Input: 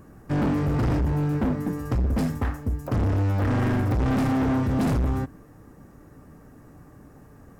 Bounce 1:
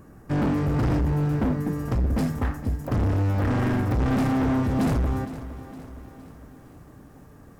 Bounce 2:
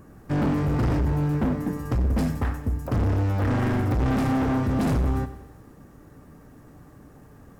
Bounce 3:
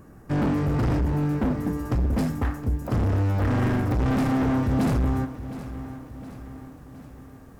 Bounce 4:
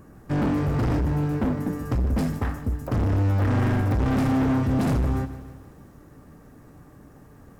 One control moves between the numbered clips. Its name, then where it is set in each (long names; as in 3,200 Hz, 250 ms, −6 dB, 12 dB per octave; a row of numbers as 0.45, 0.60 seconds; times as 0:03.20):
feedback echo at a low word length, delay time: 462, 94, 716, 152 milliseconds